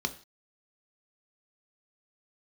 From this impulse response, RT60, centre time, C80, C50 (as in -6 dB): no single decay rate, 6 ms, 19.0 dB, 15.5 dB